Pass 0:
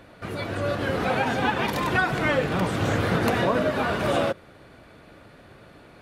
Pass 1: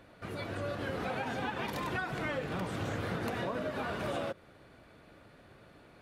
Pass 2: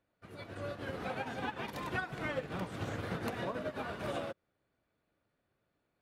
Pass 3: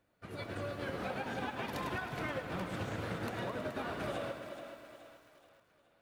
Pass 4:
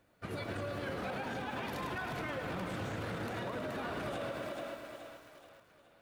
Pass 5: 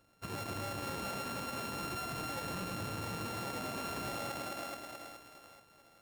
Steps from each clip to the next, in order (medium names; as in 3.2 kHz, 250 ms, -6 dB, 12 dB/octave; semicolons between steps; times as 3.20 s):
compression 3:1, threshold -25 dBFS, peak gain reduction 6 dB; trim -8 dB
upward expansion 2.5:1, over -49 dBFS; trim +1 dB
compression, threshold -41 dBFS, peak gain reduction 10 dB; on a send: thinning echo 425 ms, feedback 48%, high-pass 250 Hz, level -10 dB; on the sum: bit-crushed delay 107 ms, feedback 80%, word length 11-bit, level -11 dB; trim +5 dB
peak limiter -36.5 dBFS, peak gain reduction 11.5 dB; trim +6 dB
sorted samples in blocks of 32 samples; in parallel at -3 dB: saturation -39 dBFS, distortion -12 dB; on the sum: trim -4 dB